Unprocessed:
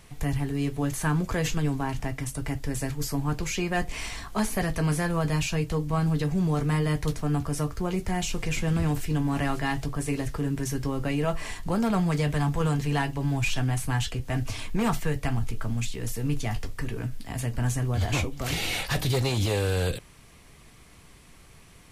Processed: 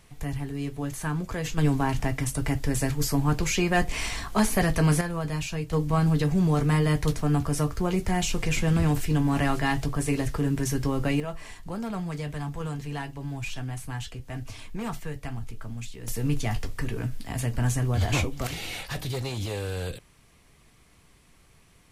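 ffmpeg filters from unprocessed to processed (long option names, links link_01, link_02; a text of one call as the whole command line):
ffmpeg -i in.wav -af "asetnsamples=nb_out_samples=441:pad=0,asendcmd='1.58 volume volume 4dB;5.01 volume volume -4dB;5.73 volume volume 2.5dB;11.2 volume volume -7.5dB;16.08 volume volume 1.5dB;18.47 volume volume -6dB',volume=-4dB" out.wav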